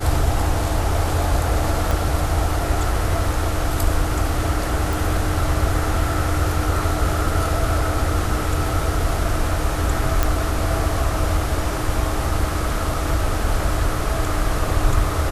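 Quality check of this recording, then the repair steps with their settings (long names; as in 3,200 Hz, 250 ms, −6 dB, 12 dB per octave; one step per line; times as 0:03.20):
0:01.91: click
0:04.93: click
0:10.23: click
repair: click removal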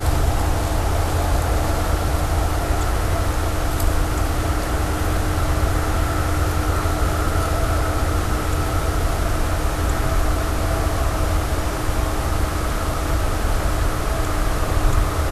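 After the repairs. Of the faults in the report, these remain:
0:01.91: click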